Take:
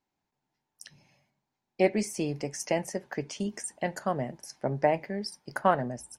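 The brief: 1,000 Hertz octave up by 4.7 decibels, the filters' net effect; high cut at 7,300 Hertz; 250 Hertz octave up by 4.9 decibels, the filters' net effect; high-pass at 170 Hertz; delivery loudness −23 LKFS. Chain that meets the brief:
high-pass filter 170 Hz
low-pass filter 7,300 Hz
parametric band 250 Hz +8 dB
parametric band 1,000 Hz +6 dB
level +4.5 dB

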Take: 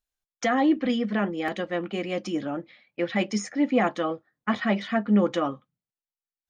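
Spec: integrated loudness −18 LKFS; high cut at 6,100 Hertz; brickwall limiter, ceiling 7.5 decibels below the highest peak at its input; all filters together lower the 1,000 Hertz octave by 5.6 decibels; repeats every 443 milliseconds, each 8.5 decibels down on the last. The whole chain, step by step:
low-pass filter 6,100 Hz
parametric band 1,000 Hz −8.5 dB
brickwall limiter −19 dBFS
repeating echo 443 ms, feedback 38%, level −8.5 dB
level +11.5 dB

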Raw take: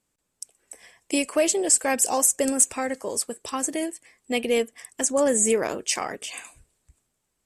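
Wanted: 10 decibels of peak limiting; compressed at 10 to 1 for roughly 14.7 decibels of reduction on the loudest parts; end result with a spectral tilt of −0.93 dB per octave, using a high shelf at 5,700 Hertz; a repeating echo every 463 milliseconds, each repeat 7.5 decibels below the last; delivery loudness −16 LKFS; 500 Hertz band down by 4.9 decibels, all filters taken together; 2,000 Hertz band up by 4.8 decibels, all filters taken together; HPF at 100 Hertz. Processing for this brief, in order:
high-pass filter 100 Hz
parametric band 500 Hz −6 dB
parametric band 2,000 Hz +5.5 dB
high-shelf EQ 5,700 Hz +5 dB
downward compressor 10 to 1, threshold −26 dBFS
brickwall limiter −21 dBFS
repeating echo 463 ms, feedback 42%, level −7.5 dB
level +16.5 dB

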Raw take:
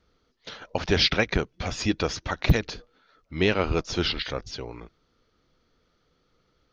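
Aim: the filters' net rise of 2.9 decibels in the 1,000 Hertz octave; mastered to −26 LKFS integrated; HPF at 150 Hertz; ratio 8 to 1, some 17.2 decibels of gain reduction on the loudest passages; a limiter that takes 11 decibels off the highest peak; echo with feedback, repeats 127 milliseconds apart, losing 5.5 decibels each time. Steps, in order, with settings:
high-pass filter 150 Hz
parametric band 1,000 Hz +4 dB
downward compressor 8 to 1, threshold −35 dBFS
brickwall limiter −29.5 dBFS
repeating echo 127 ms, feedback 53%, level −5.5 dB
level +15 dB

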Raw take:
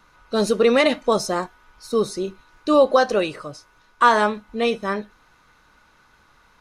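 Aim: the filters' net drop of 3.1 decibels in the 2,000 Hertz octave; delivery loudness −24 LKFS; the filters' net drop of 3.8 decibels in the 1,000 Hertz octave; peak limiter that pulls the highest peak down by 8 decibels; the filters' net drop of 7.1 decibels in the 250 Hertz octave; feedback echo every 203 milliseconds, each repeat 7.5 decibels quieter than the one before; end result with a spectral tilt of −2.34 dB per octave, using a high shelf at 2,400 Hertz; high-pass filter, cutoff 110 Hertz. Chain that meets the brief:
high-pass filter 110 Hz
parametric band 250 Hz −8.5 dB
parametric band 1,000 Hz −4 dB
parametric band 2,000 Hz −5.5 dB
high-shelf EQ 2,400 Hz +6.5 dB
brickwall limiter −15.5 dBFS
repeating echo 203 ms, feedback 42%, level −7.5 dB
level +2 dB

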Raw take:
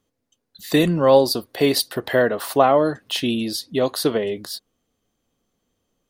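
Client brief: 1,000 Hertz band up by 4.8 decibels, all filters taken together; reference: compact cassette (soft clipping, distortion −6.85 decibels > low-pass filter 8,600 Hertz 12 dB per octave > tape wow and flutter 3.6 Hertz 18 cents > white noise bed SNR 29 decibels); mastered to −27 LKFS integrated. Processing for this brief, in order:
parametric band 1,000 Hz +6.5 dB
soft clipping −16 dBFS
low-pass filter 8,600 Hz 12 dB per octave
tape wow and flutter 3.6 Hz 18 cents
white noise bed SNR 29 dB
level −3.5 dB

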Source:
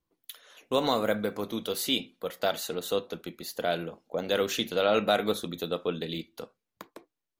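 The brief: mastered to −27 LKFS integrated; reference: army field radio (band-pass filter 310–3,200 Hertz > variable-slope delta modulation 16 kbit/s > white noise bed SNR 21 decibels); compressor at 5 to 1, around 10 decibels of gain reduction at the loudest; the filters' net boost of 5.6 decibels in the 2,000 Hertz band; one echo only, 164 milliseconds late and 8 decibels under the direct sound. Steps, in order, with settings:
parametric band 2,000 Hz +9 dB
downward compressor 5 to 1, threshold −29 dBFS
band-pass filter 310–3,200 Hz
single-tap delay 164 ms −8 dB
variable-slope delta modulation 16 kbit/s
white noise bed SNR 21 dB
level +10 dB

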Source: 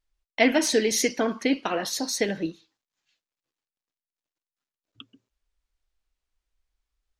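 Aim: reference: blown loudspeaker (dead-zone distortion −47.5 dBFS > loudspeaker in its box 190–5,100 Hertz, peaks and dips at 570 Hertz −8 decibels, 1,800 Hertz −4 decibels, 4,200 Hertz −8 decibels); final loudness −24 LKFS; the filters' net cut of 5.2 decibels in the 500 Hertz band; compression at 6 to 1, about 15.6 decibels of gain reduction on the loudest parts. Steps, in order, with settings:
parametric band 500 Hz −3 dB
downward compressor 6 to 1, threshold −33 dBFS
dead-zone distortion −47.5 dBFS
loudspeaker in its box 190–5,100 Hz, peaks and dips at 570 Hz −8 dB, 1,800 Hz −4 dB, 4,200 Hz −8 dB
level +17.5 dB

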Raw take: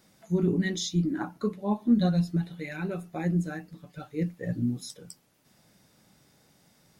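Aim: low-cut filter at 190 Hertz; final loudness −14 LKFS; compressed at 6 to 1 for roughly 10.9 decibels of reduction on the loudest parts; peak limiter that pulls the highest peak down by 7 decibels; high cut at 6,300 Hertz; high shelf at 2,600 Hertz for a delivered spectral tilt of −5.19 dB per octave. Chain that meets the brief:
high-pass filter 190 Hz
low-pass filter 6,300 Hz
high-shelf EQ 2,600 Hz +5 dB
downward compressor 6 to 1, threshold −30 dBFS
level +24 dB
brickwall limiter −4 dBFS

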